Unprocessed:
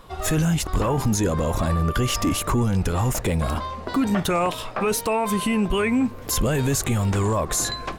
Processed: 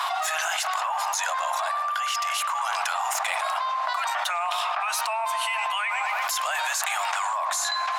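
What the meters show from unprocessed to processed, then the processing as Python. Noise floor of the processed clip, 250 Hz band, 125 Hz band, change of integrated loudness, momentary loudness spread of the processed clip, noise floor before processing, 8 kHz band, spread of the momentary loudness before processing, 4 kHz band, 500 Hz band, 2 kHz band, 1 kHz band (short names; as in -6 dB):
-28 dBFS, under -40 dB, under -40 dB, -3.0 dB, 1 LU, -36 dBFS, -2.0 dB, 3 LU, +2.0 dB, -11.0 dB, +4.5 dB, +4.0 dB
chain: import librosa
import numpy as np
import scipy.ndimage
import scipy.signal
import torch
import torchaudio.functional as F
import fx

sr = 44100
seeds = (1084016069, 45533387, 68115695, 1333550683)

p1 = scipy.signal.sosfilt(scipy.signal.butter(12, 690.0, 'highpass', fs=sr, output='sos'), x)
p2 = fx.high_shelf(p1, sr, hz=8800.0, db=-11.0)
p3 = p2 + fx.echo_wet_lowpass(p2, sr, ms=111, feedback_pct=61, hz=2200.0, wet_db=-10, dry=0)
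p4 = fx.env_flatten(p3, sr, amount_pct=100)
y = F.gain(torch.from_numpy(p4), -3.5).numpy()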